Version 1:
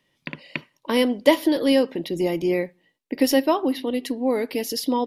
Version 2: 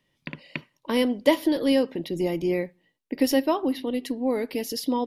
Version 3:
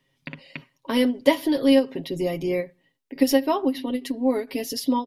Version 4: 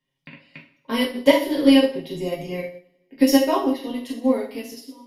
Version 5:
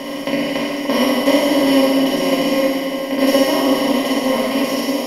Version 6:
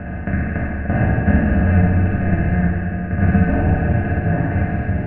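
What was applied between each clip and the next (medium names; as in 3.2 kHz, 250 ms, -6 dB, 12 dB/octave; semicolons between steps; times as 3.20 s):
bass shelf 150 Hz +7.5 dB; trim -4 dB
comb 7.4 ms, depth 71%; endings held to a fixed fall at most 280 dB/s
fade out at the end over 0.63 s; two-slope reverb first 0.6 s, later 2.2 s, from -24 dB, DRR -3.5 dB; upward expansion 1.5:1, over -40 dBFS; trim +1.5 dB
spectral levelling over time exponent 0.2; on a send: flutter echo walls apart 10.2 m, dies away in 0.79 s; on the sum: trim -5 dB
mistuned SSB -360 Hz 170–2200 Hz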